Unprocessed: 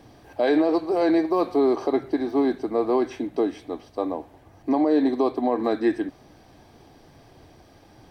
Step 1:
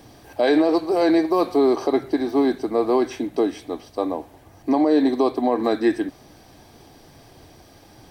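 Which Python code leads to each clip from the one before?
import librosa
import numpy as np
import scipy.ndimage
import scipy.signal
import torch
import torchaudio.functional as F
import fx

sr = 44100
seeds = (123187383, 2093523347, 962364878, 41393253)

y = fx.high_shelf(x, sr, hz=4800.0, db=9.5)
y = y * librosa.db_to_amplitude(2.5)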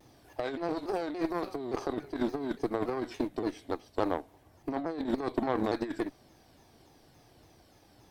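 y = fx.over_compress(x, sr, threshold_db=-22.0, ratio=-1.0)
y = fx.cheby_harmonics(y, sr, harmonics=(2, 7), levels_db=(-10, -22), full_scale_db=-8.0)
y = fx.vibrato_shape(y, sr, shape='saw_down', rate_hz=3.5, depth_cents=160.0)
y = y * librosa.db_to_amplitude(-8.0)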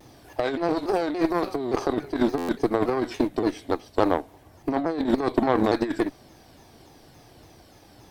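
y = fx.buffer_glitch(x, sr, at_s=(2.37,), block=512, repeats=9)
y = y * librosa.db_to_amplitude(8.5)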